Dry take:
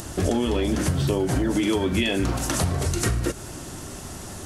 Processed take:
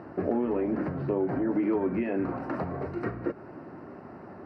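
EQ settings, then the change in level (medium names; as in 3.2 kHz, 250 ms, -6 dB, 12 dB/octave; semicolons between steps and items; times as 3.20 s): boxcar filter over 13 samples; high-pass 220 Hz 12 dB/octave; distance through air 400 m; -1.5 dB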